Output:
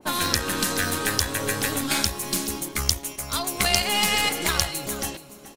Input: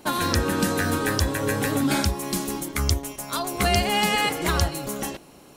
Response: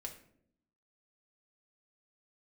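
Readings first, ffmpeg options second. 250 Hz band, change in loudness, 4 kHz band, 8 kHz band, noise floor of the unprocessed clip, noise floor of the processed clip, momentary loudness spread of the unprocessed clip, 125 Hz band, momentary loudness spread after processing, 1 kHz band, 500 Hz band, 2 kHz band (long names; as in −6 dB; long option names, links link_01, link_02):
−5.5 dB, +0.5 dB, +3.5 dB, +5.0 dB, −49 dBFS, −45 dBFS, 9 LU, −6.5 dB, 8 LU, −2.5 dB, −4.0 dB, +1.0 dB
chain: -filter_complex "[0:a]aeval=exprs='0.531*(cos(1*acos(clip(val(0)/0.531,-1,1)))-cos(1*PI/2))+0.0841*(cos(4*acos(clip(val(0)/0.531,-1,1)))-cos(4*PI/2))':channel_layout=same,aecho=1:1:426:0.2,acrossover=split=690[link_01][link_02];[link_01]acompressor=threshold=-24dB:ratio=6[link_03];[link_03][link_02]amix=inputs=2:normalize=0,adynamicequalizer=threshold=0.0126:dfrequency=1900:dqfactor=0.7:tfrequency=1900:tqfactor=0.7:attack=5:release=100:ratio=0.375:range=3.5:mode=boostabove:tftype=highshelf,volume=-2.5dB"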